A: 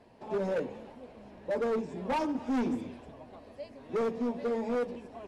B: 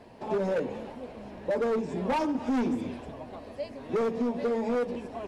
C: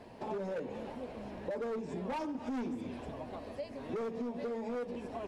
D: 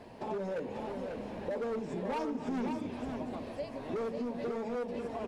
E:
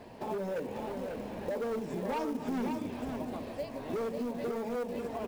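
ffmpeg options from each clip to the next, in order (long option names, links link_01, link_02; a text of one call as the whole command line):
ffmpeg -i in.wav -af "acompressor=threshold=-33dB:ratio=6,volume=7.5dB" out.wav
ffmpeg -i in.wav -af "acompressor=threshold=-36dB:ratio=4,volume=-1dB" out.wav
ffmpeg -i in.wav -af "aecho=1:1:544:0.531,volume=1.5dB" out.wav
ffmpeg -i in.wav -af "acrusher=bits=6:mode=log:mix=0:aa=0.000001,volume=1dB" out.wav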